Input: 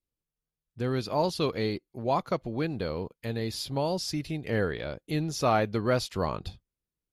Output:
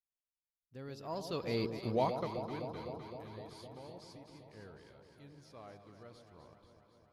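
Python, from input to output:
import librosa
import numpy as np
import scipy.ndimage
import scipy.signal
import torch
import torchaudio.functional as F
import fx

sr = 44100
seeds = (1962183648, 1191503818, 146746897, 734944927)

y = fx.doppler_pass(x, sr, speed_mps=22, closest_m=1.8, pass_at_s=1.78)
y = fx.echo_alternate(y, sr, ms=128, hz=910.0, feedback_pct=86, wet_db=-7.5)
y = y * 10.0 ** (4.0 / 20.0)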